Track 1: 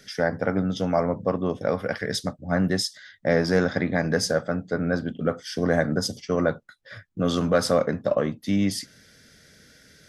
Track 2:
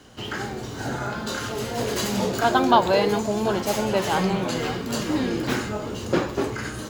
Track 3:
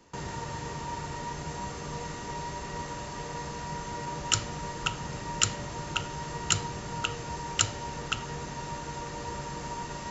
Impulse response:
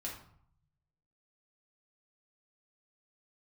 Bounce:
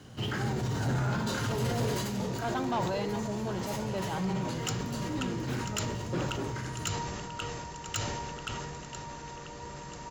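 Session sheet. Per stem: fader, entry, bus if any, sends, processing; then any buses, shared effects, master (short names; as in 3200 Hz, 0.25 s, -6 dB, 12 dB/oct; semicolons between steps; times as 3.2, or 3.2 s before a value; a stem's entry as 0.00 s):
off
1.78 s -4.5 dB -> 2.09 s -13 dB, 0.00 s, no send, no echo send, bell 130 Hz +11.5 dB 1.2 oct
-6.5 dB, 0.35 s, no send, echo send -14.5 dB, vibrato 0.88 Hz 7.2 cents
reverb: off
echo: feedback echo 0.988 s, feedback 43%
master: soft clip -23.5 dBFS, distortion -16 dB; sustainer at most 23 dB/s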